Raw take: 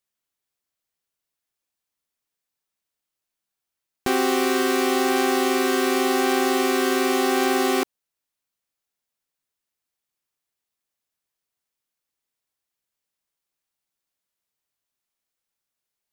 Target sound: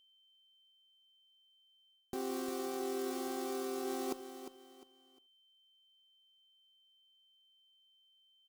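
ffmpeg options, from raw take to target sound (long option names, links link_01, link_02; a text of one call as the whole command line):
ffmpeg -i in.wav -filter_complex "[0:a]atempo=1.9,asplit=2[link_01][link_02];[link_02]adelay=80,highpass=300,lowpass=3400,asoftclip=type=hard:threshold=-21dB,volume=-24dB[link_03];[link_01][link_03]amix=inputs=2:normalize=0,aeval=exprs='val(0)+0.00224*sin(2*PI*3100*n/s)':channel_layout=same,areverse,acompressor=threshold=-29dB:ratio=6,areverse,equalizer=frequency=2100:width_type=o:width=1.7:gain=-11.5,asplit=2[link_04][link_05];[link_05]aecho=0:1:353|706|1059:0.299|0.0896|0.0269[link_06];[link_04][link_06]amix=inputs=2:normalize=0,volume=-5.5dB" out.wav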